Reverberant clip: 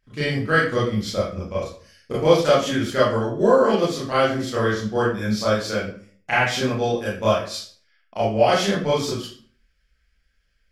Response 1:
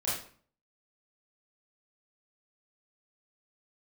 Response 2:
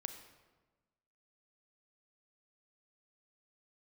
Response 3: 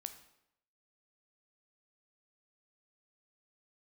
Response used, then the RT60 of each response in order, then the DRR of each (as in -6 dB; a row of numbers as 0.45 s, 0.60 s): 1; 0.45 s, 1.3 s, 0.80 s; -9.5 dB, 7.5 dB, 8.5 dB